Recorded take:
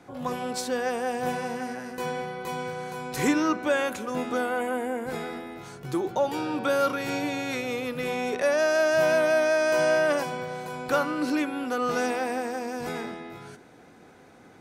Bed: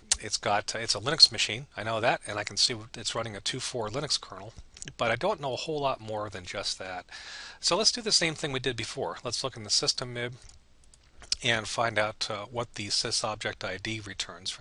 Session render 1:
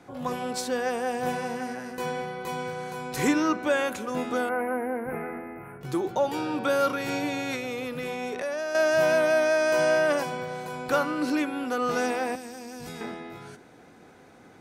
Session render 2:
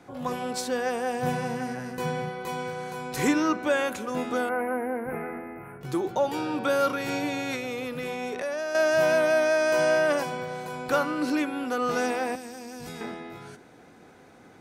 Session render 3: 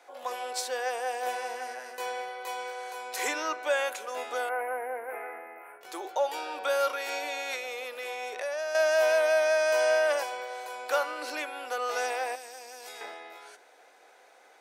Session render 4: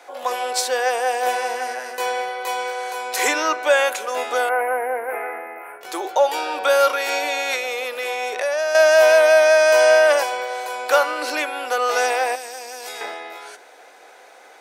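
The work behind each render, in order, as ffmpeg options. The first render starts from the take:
ffmpeg -i in.wav -filter_complex "[0:a]asettb=1/sr,asplit=3[link_01][link_02][link_03];[link_01]atrim=end=4.494[link_04];[link_02]atrim=start=4.49:end=5.81,asetpts=PTS-STARTPTS,afade=type=in:duration=0.004:curve=qsin,afade=type=out:start_time=1.316:duration=0.004:curve=qsin,asuperstop=centerf=5200:order=12:qfactor=0.69[link_05];[link_03]atrim=start=5.806[link_06];[link_04][link_05]acrossfade=duration=0.004:curve1=hsin:curve2=qsin[link_07];[link_07][link_06]acrossfade=duration=0.004:curve1=qsin:curve2=hsin,asettb=1/sr,asplit=3[link_08][link_09][link_10];[link_08]atrim=end=7.554[link_11];[link_09]atrim=start=7.55:end=8.75,asetpts=PTS-STARTPTS,afade=type=in:duration=0.004:curve=qsin,afade=type=out:start_time=1.196:duration=0.004:curve=qsin,acompressor=threshold=-28dB:ratio=6:attack=3.2:release=140:knee=1:detection=peak[link_12];[link_10]atrim=start=8.746[link_13];[link_11][link_12]acrossfade=duration=0.004:curve1=hsin:curve2=qsin[link_14];[link_14][link_13]acrossfade=duration=0.004:curve1=qsin:curve2=hsin,asettb=1/sr,asplit=3[link_15][link_16][link_17];[link_15]atrim=end=12.354[link_18];[link_16]atrim=start=12.35:end=13.01,asetpts=PTS-STARTPTS,afade=type=in:duration=0.004:curve=qsin,afade=type=out:start_time=0.656:duration=0.004:curve=qsin,acrossover=split=200|3000[link_19][link_20][link_21];[link_20]acompressor=threshold=-40dB:ratio=6:attack=3.2:release=140:knee=2.83:detection=peak[link_22];[link_19][link_22][link_21]amix=inputs=3:normalize=0[link_23];[link_17]atrim=start=13.006[link_24];[link_18][link_23]acrossfade=duration=0.004:curve1=hsin:curve2=qsin[link_25];[link_25][link_24]acrossfade=duration=0.004:curve1=qsin:curve2=hsin" out.wav
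ffmpeg -i in.wav -filter_complex "[0:a]asettb=1/sr,asplit=3[link_01][link_02][link_03];[link_01]atrim=end=1.224[link_04];[link_02]atrim=start=1.22:end=2.3,asetpts=PTS-STARTPTS,afade=type=in:duration=0.004:curve=qsin,afade=type=out:start_time=1.076:duration=0.004:curve=qsin,equalizer=frequency=130:width_type=o:width=0.77:gain=12.5[link_05];[link_03]atrim=start=2.296[link_06];[link_04][link_05]acrossfade=duration=0.004:curve1=hsin:curve2=qsin[link_07];[link_07][link_06]acrossfade=duration=0.004:curve1=qsin:curve2=hsin" out.wav
ffmpeg -i in.wav -af "highpass=frequency=540:width=0.5412,highpass=frequency=540:width=1.3066,equalizer=frequency=1200:width_type=o:width=0.75:gain=-4" out.wav
ffmpeg -i in.wav -af "volume=11dB" out.wav

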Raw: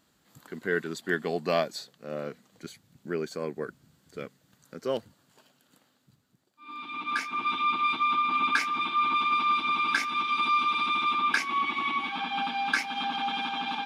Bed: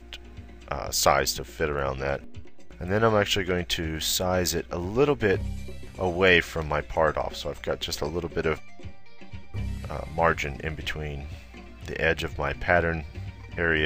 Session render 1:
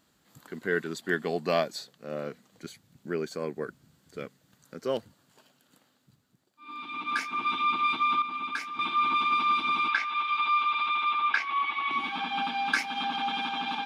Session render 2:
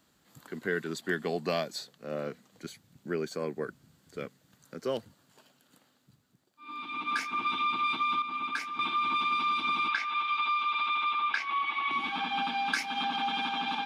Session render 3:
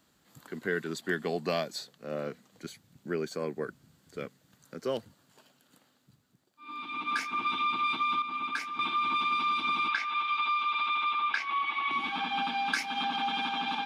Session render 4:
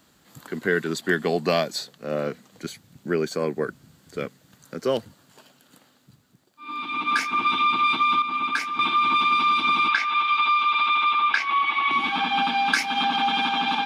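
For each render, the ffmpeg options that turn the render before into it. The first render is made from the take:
ffmpeg -i in.wav -filter_complex "[0:a]asettb=1/sr,asplit=3[link_01][link_02][link_03];[link_01]atrim=end=9.884[link_04];[link_02]atrim=start=9.88:end=11.91,asetpts=PTS-STARTPTS,afade=type=in:duration=0.004:curve=qsin,afade=type=out:start_time=2.026:duration=0.004:curve=qsin,acrossover=split=530 4300:gain=0.126 1 0.0708[link_05][link_06][link_07];[link_05][link_06][link_07]amix=inputs=3:normalize=0[link_08];[link_03]atrim=start=11.906[link_09];[link_04][link_08]acrossfade=duration=0.004:curve1=hsin:curve2=qsin[link_10];[link_10][link_09]acrossfade=duration=0.004:curve1=qsin:curve2=hsin,asplit=3[link_11][link_12][link_13];[link_11]atrim=end=8.222[link_14];[link_12]atrim=start=8.218:end=8.792,asetpts=PTS-STARTPTS,volume=-8dB[link_15];[link_13]atrim=start=8.788[link_16];[link_14][link_15]acrossfade=duration=0.004:curve1=hsin:curve2=hsin[link_17];[link_17][link_16]acrossfade=duration=0.004:curve1=hsin:curve2=hsin" out.wav
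ffmpeg -i in.wav -filter_complex "[0:a]acrossover=split=180|3000[link_01][link_02][link_03];[link_02]acompressor=threshold=-27dB:ratio=6[link_04];[link_01][link_04][link_03]amix=inputs=3:normalize=0" out.wav
ffmpeg -i in.wav -af anull out.wav
ffmpeg -i in.wav -af "volume=8.5dB" out.wav

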